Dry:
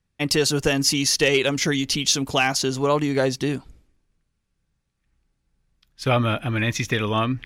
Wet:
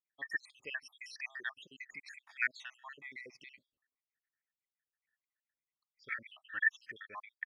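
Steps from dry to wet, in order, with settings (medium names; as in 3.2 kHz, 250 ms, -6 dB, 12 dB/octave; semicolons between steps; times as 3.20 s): random holes in the spectrogram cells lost 72%; band-pass filter 1.9 kHz, Q 16; pitch shift -1 st; trim +7 dB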